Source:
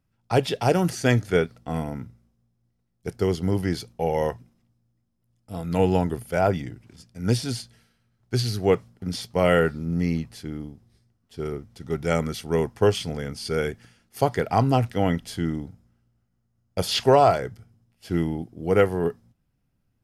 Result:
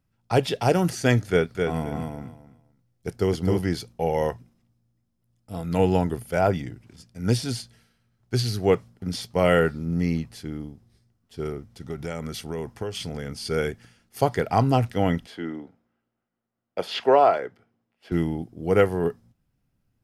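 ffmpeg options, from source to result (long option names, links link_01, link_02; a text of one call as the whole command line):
ffmpeg -i in.wav -filter_complex "[0:a]asettb=1/sr,asplit=3[link_01][link_02][link_03];[link_01]atrim=end=1.294[link_04];[link_02]atrim=start=1.29:end=3.59,asetpts=PTS-STARTPTS,afade=type=in:duration=0.004:curve=qsin,afade=type=out:start_time=2.296:duration=0.004:curve=qsin,aecho=1:1:259|518|777:0.596|0.113|0.0215,atrim=end_sample=101430[link_05];[link_03]atrim=start=3.586[link_06];[link_04][link_05]acrossfade=duration=0.004:curve1=hsin:curve2=qsin[link_07];[link_07][link_06]acrossfade=duration=0.004:curve1=qsin:curve2=hsin,asettb=1/sr,asplit=3[link_08][link_09][link_10];[link_08]atrim=end=11.504[link_11];[link_09]atrim=start=11.5:end=13.33,asetpts=PTS-STARTPTS,afade=type=in:duration=0.004:curve=qsin,afade=type=out:start_time=1.826:duration=0.004:curve=qsin,acompressor=threshold=-27dB:ratio=6:attack=3.2:release=140:knee=1:detection=peak[link_12];[link_10]atrim=start=13.326[link_13];[link_11][link_12]acrossfade=duration=0.004:curve1=hsin:curve2=qsin[link_14];[link_14][link_13]acrossfade=duration=0.004:curve1=qsin:curve2=hsin,asettb=1/sr,asplit=3[link_15][link_16][link_17];[link_15]atrim=end=15.264[link_18];[link_16]atrim=start=15.26:end=18.12,asetpts=PTS-STARTPTS,afade=type=in:duration=0.004:curve=qsin,afade=type=out:start_time=2.856:duration=0.004:curve=qsin,acrossover=split=250 3400:gain=0.0708 1 0.141[link_19][link_20][link_21];[link_19][link_20][link_21]amix=inputs=3:normalize=0[link_22];[link_17]atrim=start=18.116[link_23];[link_18][link_22]acrossfade=duration=0.004:curve1=hsin:curve2=qsin[link_24];[link_24][link_23]acrossfade=duration=0.004:curve1=qsin:curve2=hsin" out.wav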